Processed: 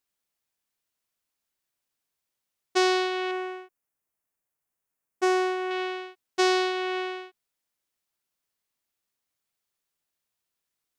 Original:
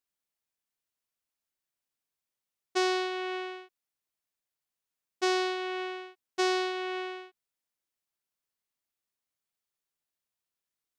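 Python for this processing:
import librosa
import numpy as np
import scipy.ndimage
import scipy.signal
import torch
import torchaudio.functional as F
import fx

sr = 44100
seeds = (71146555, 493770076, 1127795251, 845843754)

y = fx.peak_eq(x, sr, hz=4000.0, db=-11.0, octaves=1.2, at=(3.31, 5.71))
y = y * 10.0 ** (5.0 / 20.0)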